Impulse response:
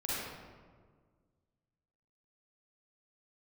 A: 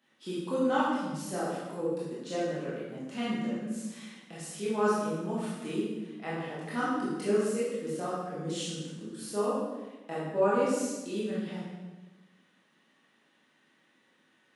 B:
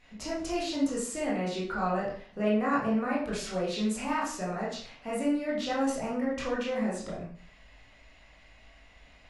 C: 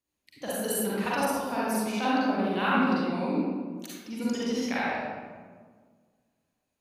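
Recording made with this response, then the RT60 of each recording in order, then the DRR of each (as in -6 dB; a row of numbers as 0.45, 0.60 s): C; 1.2, 0.45, 1.7 s; -9.0, -6.5, -8.5 dB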